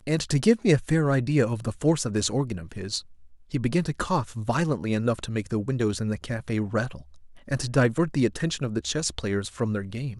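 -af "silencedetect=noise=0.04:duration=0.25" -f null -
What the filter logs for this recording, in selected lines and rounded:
silence_start: 2.99
silence_end: 3.54 | silence_duration: 0.55
silence_start: 6.95
silence_end: 7.51 | silence_duration: 0.56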